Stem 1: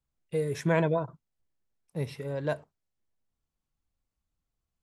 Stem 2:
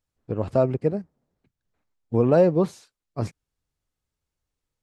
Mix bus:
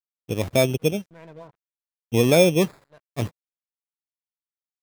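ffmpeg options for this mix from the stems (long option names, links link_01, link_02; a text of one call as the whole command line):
ffmpeg -i stem1.wav -i stem2.wav -filter_complex "[0:a]adelay=450,volume=-9dB[link_01];[1:a]equalizer=frequency=2300:width_type=o:width=0.77:gain=-9,acrusher=samples=15:mix=1:aa=0.000001,volume=1.5dB,asplit=2[link_02][link_03];[link_03]apad=whole_len=232423[link_04];[link_01][link_04]sidechaincompress=threshold=-41dB:ratio=3:attack=21:release=405[link_05];[link_05][link_02]amix=inputs=2:normalize=0,aeval=exprs='sgn(val(0))*max(abs(val(0))-0.00266,0)':channel_layout=same" out.wav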